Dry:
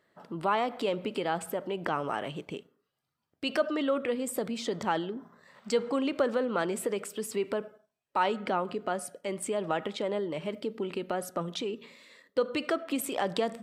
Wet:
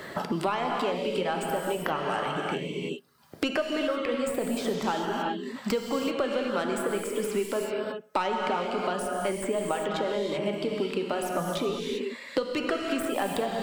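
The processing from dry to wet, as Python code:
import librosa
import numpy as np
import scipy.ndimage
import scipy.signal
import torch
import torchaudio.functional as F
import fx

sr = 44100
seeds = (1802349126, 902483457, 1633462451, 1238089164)

y = fx.tracing_dist(x, sr, depth_ms=0.062)
y = fx.dereverb_blind(y, sr, rt60_s=0.78)
y = fx.rev_gated(y, sr, seeds[0], gate_ms=410, shape='flat', drr_db=0.5)
y = fx.band_squash(y, sr, depth_pct=100)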